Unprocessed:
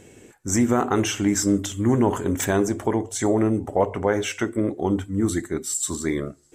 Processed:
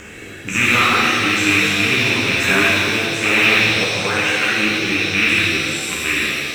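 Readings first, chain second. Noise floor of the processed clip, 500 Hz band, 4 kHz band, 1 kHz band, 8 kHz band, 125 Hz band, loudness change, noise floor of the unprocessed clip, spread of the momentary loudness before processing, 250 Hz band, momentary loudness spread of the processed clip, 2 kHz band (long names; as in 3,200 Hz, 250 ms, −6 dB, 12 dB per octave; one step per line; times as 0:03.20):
−34 dBFS, −0.5 dB, +18.0 dB, +6.5 dB, +1.5 dB, +0.5 dB, +8.5 dB, −50 dBFS, 6 LU, −1.0 dB, 6 LU, +20.5 dB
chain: loose part that buzzes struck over −23 dBFS, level −11 dBFS
flat-topped bell 1,800 Hz +13 dB
rotating-speaker cabinet horn 1.1 Hz
in parallel at −6 dB: floating-point word with a short mantissa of 2 bits
on the sum: upward compression, threshold −18 dBFS
reverb with rising layers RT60 2.2 s, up +7 semitones, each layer −8 dB, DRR −8 dB
level −11 dB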